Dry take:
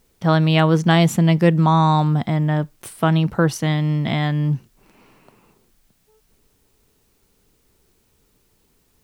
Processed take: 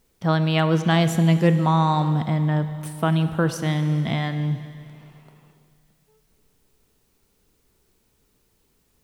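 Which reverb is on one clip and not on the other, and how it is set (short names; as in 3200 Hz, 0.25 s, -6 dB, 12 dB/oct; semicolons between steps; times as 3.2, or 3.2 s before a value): Schroeder reverb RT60 2.5 s, combs from 33 ms, DRR 10 dB; gain -4 dB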